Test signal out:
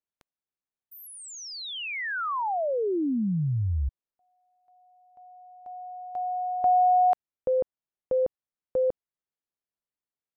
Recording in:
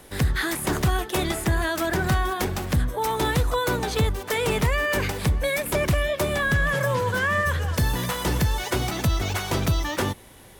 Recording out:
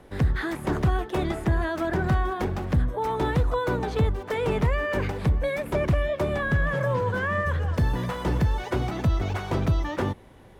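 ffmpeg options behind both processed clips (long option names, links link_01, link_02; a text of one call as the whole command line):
ffmpeg -i in.wav -af "lowpass=frequency=1100:poles=1" out.wav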